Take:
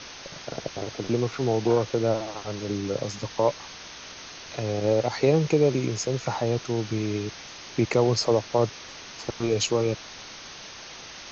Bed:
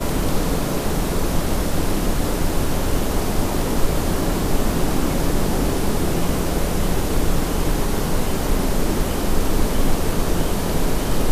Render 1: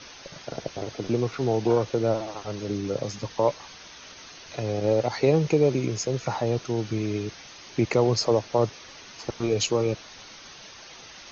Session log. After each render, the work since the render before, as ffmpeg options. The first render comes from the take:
-af "afftdn=nr=6:nf=-42"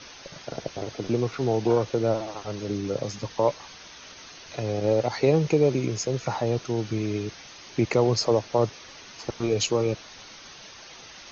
-af anull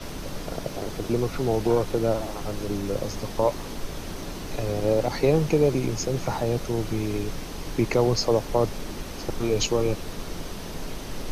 -filter_complex "[1:a]volume=0.188[s0];[0:a][s0]amix=inputs=2:normalize=0"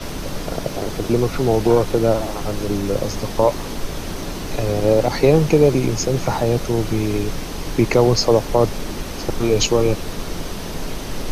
-af "volume=2.24,alimiter=limit=0.794:level=0:latency=1"

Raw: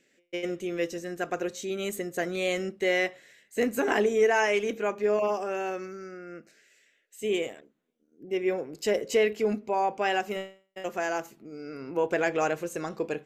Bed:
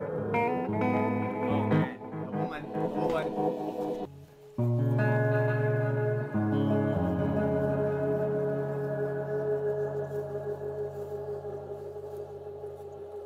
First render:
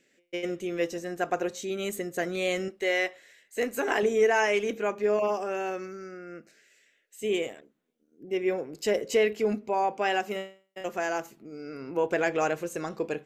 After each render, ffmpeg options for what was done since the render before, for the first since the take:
-filter_complex "[0:a]asettb=1/sr,asplit=3[s0][s1][s2];[s0]atrim=end=0.804[s3];[s1]atrim=start=0.8:end=1.59,asetpts=PTS-STARTPTS,afade=t=in:d=0.004:c=qsin,afade=t=out:st=0.786:d=0.004:c=qsin,equalizer=f=820:w=1.7:g=6[s4];[s2]atrim=start=1.586[s5];[s3][s4]acrossfade=d=0.004:c1=hsin:c2=qsin[s6];[s6][s5]acrossfade=d=0.004:c1=qsin:c2=hsin,asettb=1/sr,asplit=3[s7][s8][s9];[s7]atrim=end=2.684[s10];[s8]atrim=start=2.68:end=4.03,asetpts=PTS-STARTPTS,afade=t=in:d=0.004:c=qsin,afade=t=out:st=1.346:d=0.004:c=qsin,equalizer=f=160:t=o:w=1.4:g=-12[s11];[s9]atrim=start=4.026[s12];[s10][s11]acrossfade=d=0.004:c1=hsin:c2=qsin[s13];[s13][s12]acrossfade=d=0.004:c1=qsin:c2=hsin,asettb=1/sr,asplit=3[s14][s15][s16];[s14]atrim=end=9.844[s17];[s15]atrim=start=9.84:end=10.81,asetpts=PTS-STARTPTS,afade=t=in:d=0.004:c=qsin,afade=t=out:st=0.966:d=0.004:c=qsin,highpass=130[s18];[s16]atrim=start=10.806[s19];[s17][s18]acrossfade=d=0.004:c1=hsin:c2=qsin[s20];[s20][s19]acrossfade=d=0.004:c1=qsin:c2=hsin"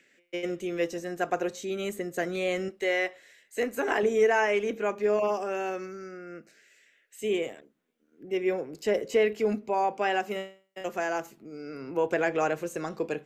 -filter_complex "[0:a]acrossover=split=170|1200|2500[s0][s1][s2][s3];[s2]acompressor=mode=upward:threshold=0.00126:ratio=2.5[s4];[s3]alimiter=level_in=2.99:limit=0.0631:level=0:latency=1:release=232,volume=0.335[s5];[s0][s1][s4][s5]amix=inputs=4:normalize=0"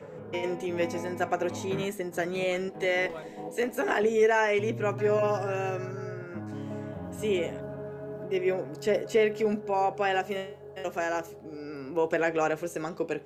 -filter_complex "[1:a]volume=0.316[s0];[0:a][s0]amix=inputs=2:normalize=0"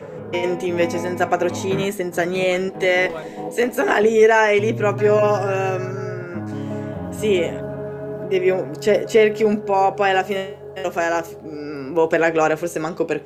-af "volume=2.99"

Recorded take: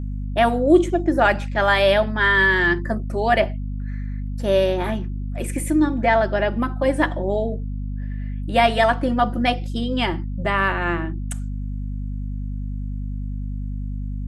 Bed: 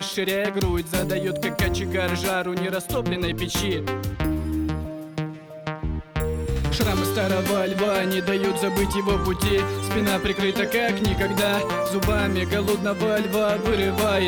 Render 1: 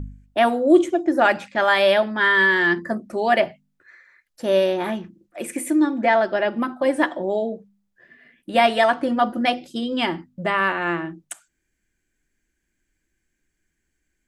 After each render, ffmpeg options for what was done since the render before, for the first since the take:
-af "bandreject=f=50:t=h:w=4,bandreject=f=100:t=h:w=4,bandreject=f=150:t=h:w=4,bandreject=f=200:t=h:w=4,bandreject=f=250:t=h:w=4"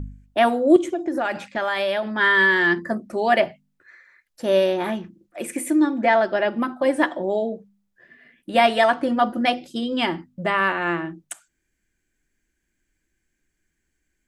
-filter_complex "[0:a]asettb=1/sr,asplit=3[s0][s1][s2];[s0]atrim=end=0.764[s3];[s1]atrim=start=0.76:end=2.12,asetpts=PTS-STARTPTS,afade=t=in:d=0.004:c=qsin,afade=t=out:st=1.356:d=0.004:c=qsin,acompressor=threshold=0.1:ratio=5:attack=3.2:release=140:knee=1:detection=peak[s4];[s2]atrim=start=2.116[s5];[s3][s4]acrossfade=d=0.004:c1=hsin:c2=qsin[s6];[s6][s5]acrossfade=d=0.004:c1=qsin:c2=hsin"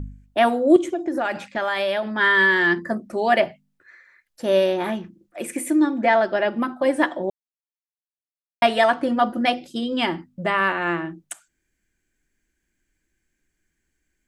-filter_complex "[0:a]asplit=3[s0][s1][s2];[s0]atrim=end=7.3,asetpts=PTS-STARTPTS,afade=t=out:st=7.296:d=0.004:c=hsin[s3];[s1]atrim=start=7.3:end=8.62,asetpts=PTS-STARTPTS,volume=0[s4];[s2]atrim=start=8.62,asetpts=PTS-STARTPTS,afade=t=in:d=0.004:c=hsin[s5];[s3][s4][s5]concat=n=3:v=0:a=1"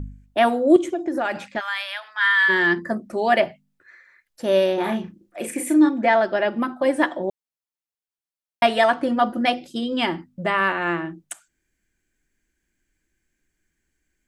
-filter_complex "[0:a]asplit=3[s0][s1][s2];[s0]afade=t=out:st=1.59:d=0.02[s3];[s1]highpass=f=1100:w=0.5412,highpass=f=1100:w=1.3066,afade=t=in:st=1.59:d=0.02,afade=t=out:st=2.48:d=0.02[s4];[s2]afade=t=in:st=2.48:d=0.02[s5];[s3][s4][s5]amix=inputs=3:normalize=0,asettb=1/sr,asplit=3[s6][s7][s8];[s6]atrim=end=4.744[s9];[s7]atrim=start=4.74:end=5.89,asetpts=PTS-STARTPTS,afade=t=in:d=0.004:c=qsin,afade=t=out:st=1.146:d=0.004:c=qsin,asplit=2[s10][s11];[s11]adelay=36,volume=0.562[s12];[s10][s12]amix=inputs=2:normalize=0,atrim=end_sample=50715[s13];[s8]atrim=start=5.886[s14];[s9][s13]acrossfade=d=0.004:c1=hsin:c2=qsin[s15];[s15][s14]acrossfade=d=0.004:c1=qsin:c2=hsin"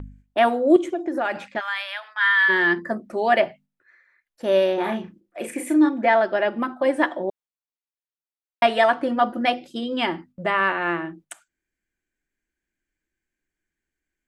-af "agate=range=0.447:threshold=0.00562:ratio=16:detection=peak,bass=f=250:g=-5,treble=f=4000:g=-6"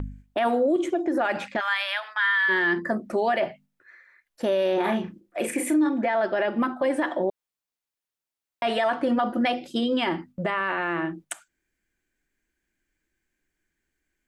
-filter_complex "[0:a]asplit=2[s0][s1];[s1]acompressor=threshold=0.0355:ratio=6,volume=0.794[s2];[s0][s2]amix=inputs=2:normalize=0,alimiter=limit=0.168:level=0:latency=1:release=28"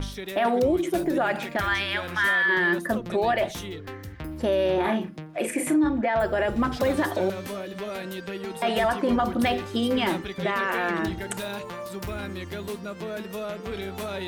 -filter_complex "[1:a]volume=0.266[s0];[0:a][s0]amix=inputs=2:normalize=0"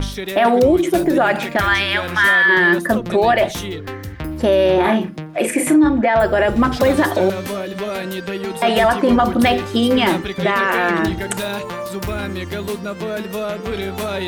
-af "volume=2.82"

